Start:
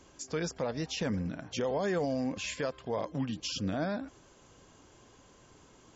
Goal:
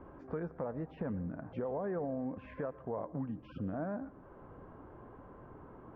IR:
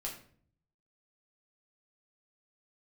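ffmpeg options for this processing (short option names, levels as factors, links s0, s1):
-filter_complex "[0:a]lowpass=f=1400:w=0.5412,lowpass=f=1400:w=1.3066,acompressor=threshold=0.00251:ratio=2,asplit=2[s0][s1];[1:a]atrim=start_sample=2205,adelay=110[s2];[s1][s2]afir=irnorm=-1:irlink=0,volume=0.112[s3];[s0][s3]amix=inputs=2:normalize=0,volume=2.24"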